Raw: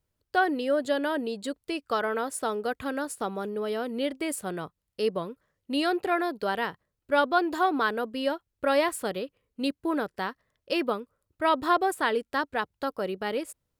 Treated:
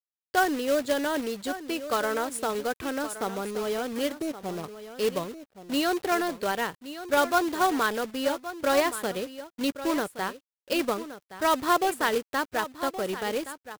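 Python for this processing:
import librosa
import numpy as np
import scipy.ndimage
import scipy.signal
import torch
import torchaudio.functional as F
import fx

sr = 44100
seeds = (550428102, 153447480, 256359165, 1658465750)

y = fx.lowpass(x, sr, hz=1000.0, slope=24, at=(4.15, 4.62), fade=0.02)
y = fx.quant_companded(y, sr, bits=4)
y = y + 10.0 ** (-13.0 / 20.0) * np.pad(y, (int(1121 * sr / 1000.0), 0))[:len(y)]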